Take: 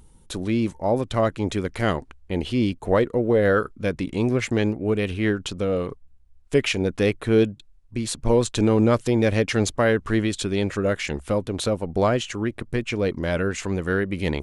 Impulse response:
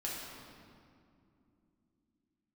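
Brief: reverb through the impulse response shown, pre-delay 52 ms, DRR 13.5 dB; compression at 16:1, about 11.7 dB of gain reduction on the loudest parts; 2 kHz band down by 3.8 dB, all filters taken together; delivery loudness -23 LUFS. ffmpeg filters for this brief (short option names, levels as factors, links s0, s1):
-filter_complex "[0:a]equalizer=f=2000:t=o:g=-5,acompressor=threshold=0.0562:ratio=16,asplit=2[s0][s1];[1:a]atrim=start_sample=2205,adelay=52[s2];[s1][s2]afir=irnorm=-1:irlink=0,volume=0.158[s3];[s0][s3]amix=inputs=2:normalize=0,volume=2.51"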